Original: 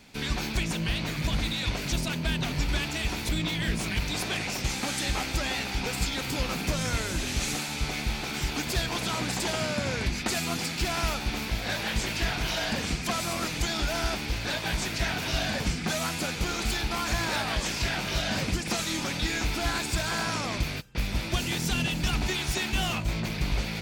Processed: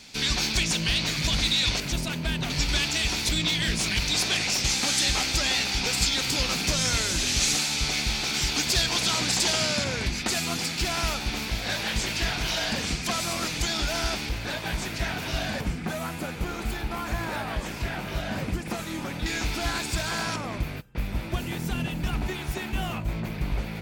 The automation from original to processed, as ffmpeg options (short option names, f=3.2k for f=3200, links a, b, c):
-af "asetnsamples=n=441:p=0,asendcmd='1.8 equalizer g 1;2.5 equalizer g 10.5;9.84 equalizer g 4;14.29 equalizer g -3;15.61 equalizer g -11;19.26 equalizer g 0.5;20.36 equalizer g -11',equalizer=f=5.3k:t=o:w=2:g=12"